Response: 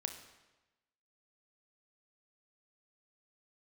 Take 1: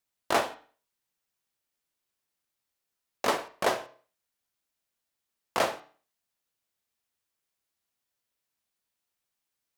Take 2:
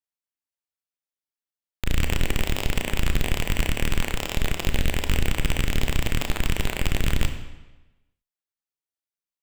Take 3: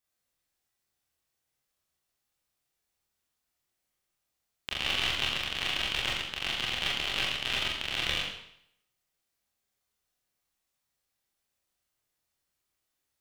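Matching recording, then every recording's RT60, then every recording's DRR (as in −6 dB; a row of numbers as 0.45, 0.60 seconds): 2; 0.45, 1.1, 0.70 seconds; 8.5, 6.0, −5.0 decibels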